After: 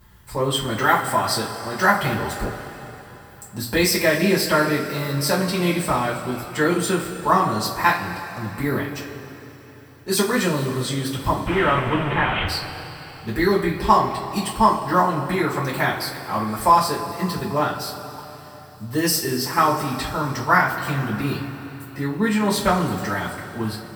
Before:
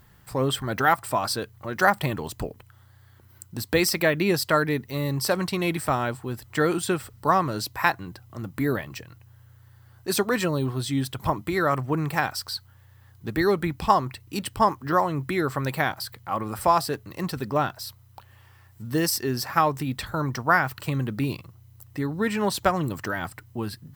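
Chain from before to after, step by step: 11.46–12.46 delta modulation 16 kbps, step -20 dBFS; two-slope reverb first 0.28 s, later 3.6 s, from -18 dB, DRR -7.5 dB; gain -4 dB

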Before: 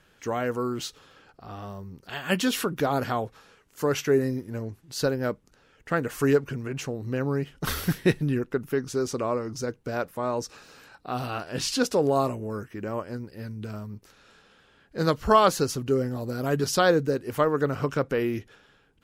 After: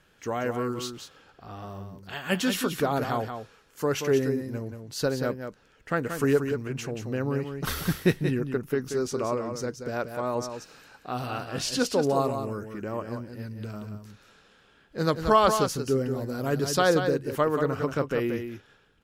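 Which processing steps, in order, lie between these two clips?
echo 0.181 s -7.5 dB; gain -1.5 dB

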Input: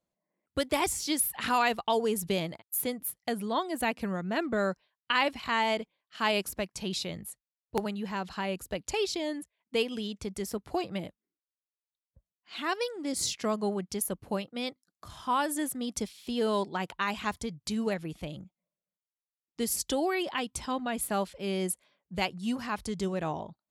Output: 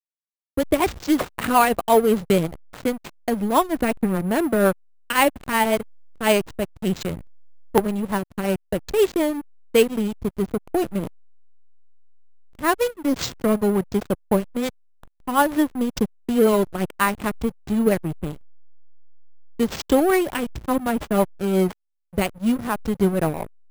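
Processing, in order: high shelf 3100 Hz -8 dB; AGC gain up to 13 dB; rotary speaker horn 5.5 Hz; backlash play -21 dBFS; careless resampling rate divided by 4×, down none, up hold; gain +1.5 dB

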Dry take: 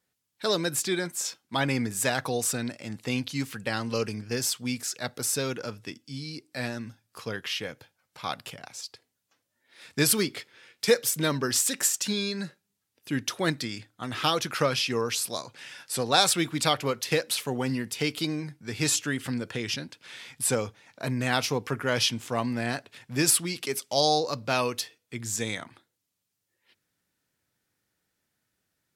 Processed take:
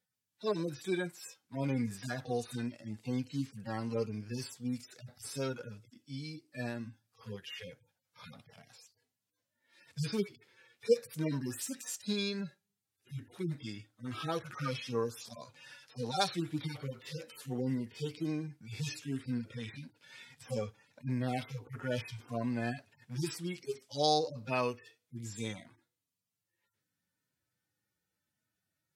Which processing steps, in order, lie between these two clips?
median-filter separation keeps harmonic; gain -4.5 dB

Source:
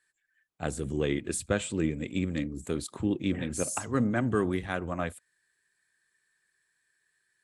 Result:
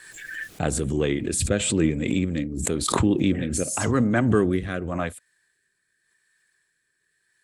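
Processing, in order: rotary speaker horn 0.9 Hz; backwards sustainer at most 40 dB/s; gain +7 dB

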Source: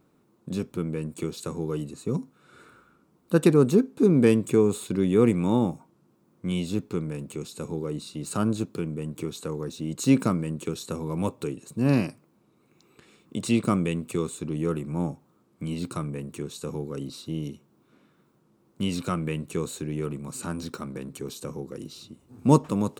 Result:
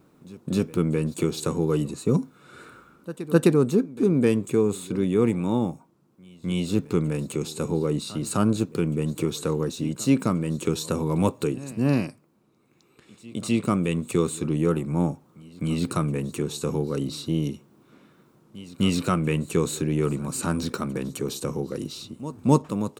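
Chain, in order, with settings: pre-echo 0.258 s -20 dB; wow and flutter 23 cents; vocal rider within 4 dB 0.5 s; gain +2.5 dB

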